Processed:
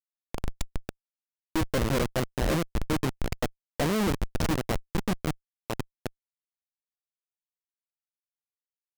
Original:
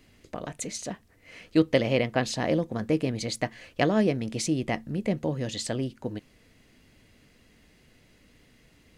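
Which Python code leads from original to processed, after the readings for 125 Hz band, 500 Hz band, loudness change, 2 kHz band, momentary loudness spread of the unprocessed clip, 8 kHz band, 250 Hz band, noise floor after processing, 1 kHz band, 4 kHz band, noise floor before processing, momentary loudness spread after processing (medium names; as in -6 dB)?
0.0 dB, -4.5 dB, -2.5 dB, -2.0 dB, 14 LU, -3.5 dB, -3.5 dB, under -85 dBFS, 0.0 dB, -2.5 dB, -60 dBFS, 13 LU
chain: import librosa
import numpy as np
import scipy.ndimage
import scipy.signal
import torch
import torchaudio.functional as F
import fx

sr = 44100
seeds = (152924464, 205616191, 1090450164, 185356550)

y = fx.notch(x, sr, hz=4100.0, q=6.8)
y = fx.schmitt(y, sr, flips_db=-24.0)
y = y * librosa.db_to_amplitude(5.5)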